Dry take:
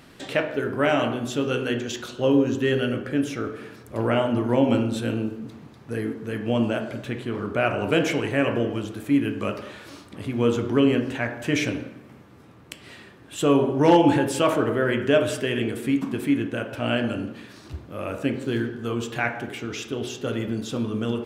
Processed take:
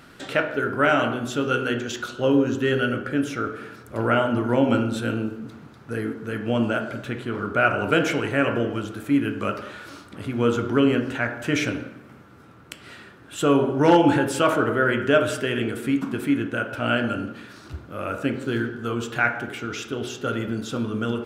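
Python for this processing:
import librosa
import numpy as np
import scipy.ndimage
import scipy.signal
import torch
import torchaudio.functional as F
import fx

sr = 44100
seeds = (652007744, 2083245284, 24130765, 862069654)

y = fx.peak_eq(x, sr, hz=1400.0, db=11.0, octaves=0.26)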